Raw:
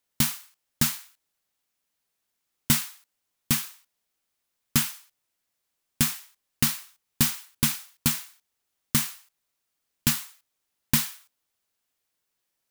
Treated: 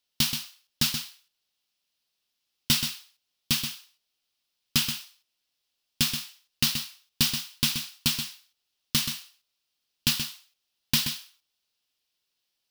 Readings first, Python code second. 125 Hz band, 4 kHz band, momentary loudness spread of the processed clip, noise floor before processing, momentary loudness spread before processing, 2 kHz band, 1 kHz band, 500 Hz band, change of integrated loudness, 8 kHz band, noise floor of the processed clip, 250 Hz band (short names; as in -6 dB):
-4.0 dB, +6.0 dB, 13 LU, -80 dBFS, 15 LU, 0.0 dB, -4.0 dB, -4.0 dB, -1.0 dB, -2.5 dB, -81 dBFS, -4.0 dB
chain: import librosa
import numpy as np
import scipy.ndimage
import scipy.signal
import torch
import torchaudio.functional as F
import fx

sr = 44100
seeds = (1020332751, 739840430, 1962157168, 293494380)

y = fx.band_shelf(x, sr, hz=3800.0, db=10.0, octaves=1.3)
y = y + 10.0 ** (-8.0 / 20.0) * np.pad(y, (int(128 * sr / 1000.0), 0))[:len(y)]
y = y * 10.0 ** (-4.5 / 20.0)